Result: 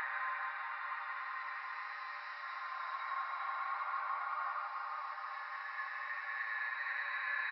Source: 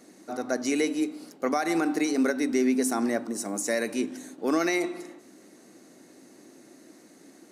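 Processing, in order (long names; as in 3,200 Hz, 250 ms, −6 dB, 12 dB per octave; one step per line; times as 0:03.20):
Butterworth high-pass 970 Hz 48 dB per octave
high-shelf EQ 3,300 Hz −9 dB
comb filter 6.5 ms, depth 57%
compressor whose output falls as the input rises −38 dBFS, ratio −0.5
brickwall limiter −33 dBFS, peak gain reduction 11 dB
downsampling to 11,025 Hz
high-frequency loss of the air 300 metres
convolution reverb RT60 2.4 s, pre-delay 3 ms, DRR 1.5 dB
extreme stretch with random phases 12×, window 0.25 s, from 0:03.19
highs frequency-modulated by the lows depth 0.3 ms
level +6 dB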